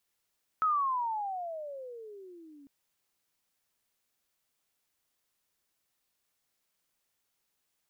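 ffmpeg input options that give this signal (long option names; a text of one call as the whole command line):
ffmpeg -f lavfi -i "aevalsrc='pow(10,(-23.5-27.5*t/2.05)/20)*sin(2*PI*1300*2.05/(-27*log(2)/12)*(exp(-27*log(2)/12*t/2.05)-1))':duration=2.05:sample_rate=44100" out.wav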